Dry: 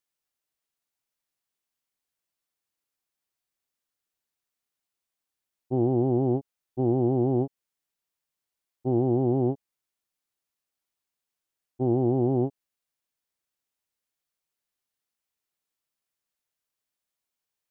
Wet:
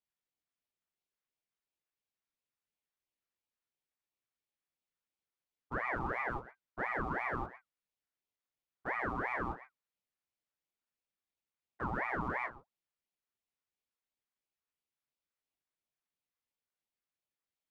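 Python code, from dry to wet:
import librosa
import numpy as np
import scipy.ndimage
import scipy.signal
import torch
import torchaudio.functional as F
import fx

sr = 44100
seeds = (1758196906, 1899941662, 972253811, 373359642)

p1 = scipy.signal.sosfilt(scipy.signal.bessel(4, 750.0, 'highpass', norm='mag', fs=sr, output='sos'), x)
p2 = fx.schmitt(p1, sr, flips_db=-39.0)
p3 = p1 + (p2 * librosa.db_to_amplitude(-3.5))
p4 = fx.lowpass(p3, sr, hz=1100.0, slope=6)
p5 = fx.doubler(p4, sr, ms=18.0, db=-4)
p6 = p5 + fx.echo_single(p5, sr, ms=120, db=-16.0, dry=0)
p7 = fx.ring_lfo(p6, sr, carrier_hz=1000.0, swing_pct=60, hz=2.9)
y = p7 * librosa.db_to_amplitude(2.5)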